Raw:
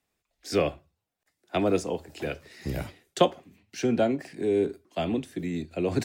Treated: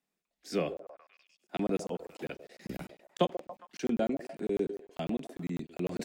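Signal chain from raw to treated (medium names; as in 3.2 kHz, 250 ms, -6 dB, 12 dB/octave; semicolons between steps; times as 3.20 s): resonant low shelf 140 Hz -8 dB, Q 3; repeats whose band climbs or falls 136 ms, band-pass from 490 Hz, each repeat 0.7 oct, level -9.5 dB; crackling interface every 0.10 s, samples 1024, zero, from 0.77 s; trim -8 dB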